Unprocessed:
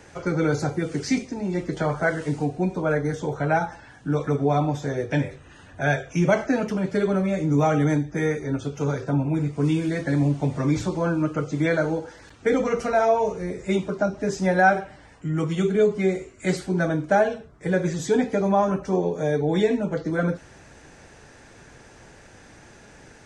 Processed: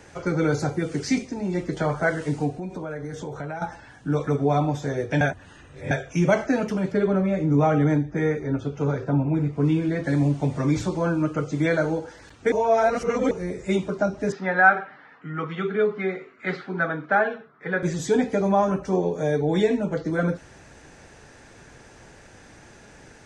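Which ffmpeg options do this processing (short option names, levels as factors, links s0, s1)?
-filter_complex "[0:a]asettb=1/sr,asplit=3[s0][s1][s2];[s0]atrim=end=2.514[s3];[s1]atrim=start=2.51:end=3.62,asetpts=PTS-STARTPTS,afade=t=in:d=0.004:c=qsin,afade=t=out:st=1.106:d=0.004:c=qsin,acompressor=threshold=0.0355:ratio=6:attack=3.2:release=140:knee=1:detection=peak[s4];[s2]atrim=start=3.616[s5];[s3][s4]acrossfade=d=0.004:c1=hsin:c2=qsin[s6];[s6][s5]acrossfade=d=0.004:c1=qsin:c2=hsin,asettb=1/sr,asplit=3[s7][s8][s9];[s7]atrim=end=6.924[s10];[s8]atrim=start=6.92:end=10.04,asetpts=PTS-STARTPTS,afade=t=in:d=0.004:c=qsin,afade=t=out:st=3.116:d=0.004:c=qsin,aemphasis=mode=reproduction:type=75fm[s11];[s9]atrim=start=10.036[s12];[s10][s11]acrossfade=d=0.004:c1=hsin:c2=qsin[s13];[s13][s12]acrossfade=d=0.004:c1=qsin:c2=hsin,asettb=1/sr,asplit=3[s14][s15][s16];[s14]atrim=end=14.324[s17];[s15]atrim=start=14.32:end=17.83,asetpts=PTS-STARTPTS,afade=t=in:d=0.004:c=qsin,afade=t=out:st=3.506:d=0.004:c=qsin,highpass=f=180:w=0.5412,highpass=f=180:w=1.3066,equalizer=f=190:t=q:w=4:g=-5,equalizer=f=330:t=q:w=4:g=-9,equalizer=f=590:t=q:w=4:g=-6,equalizer=f=1300:t=q:w=4:g=9,equalizer=f=1800:t=q:w=4:g=4,equalizer=f=2900:t=q:w=4:g=-4,lowpass=f=3600:w=0.5412,lowpass=f=3600:w=1.3066[s18];[s16]atrim=start=17.826[s19];[s17][s18]acrossfade=d=0.004:c1=hsin:c2=qsin[s20];[s20][s19]acrossfade=d=0.004:c1=qsin:c2=hsin,asplit=5[s21][s22][s23][s24][s25];[s21]atrim=end=5.212[s26];[s22]atrim=start=5.208:end=5.912,asetpts=PTS-STARTPTS,areverse[s27];[s23]atrim=start=5.908:end=12.522[s28];[s24]atrim=start=12.518:end=13.312,asetpts=PTS-STARTPTS,areverse[s29];[s25]atrim=start=13.308[s30];[s26][s27]acrossfade=d=0.004:c1=hsin:c2=hsin[s31];[s31][s28]acrossfade=d=0.004:c1=hsin:c2=hsin[s32];[s32][s29]acrossfade=d=0.004:c1=hsin:c2=hsin[s33];[s33][s30]acrossfade=d=0.004:c1=hsin:c2=hsin"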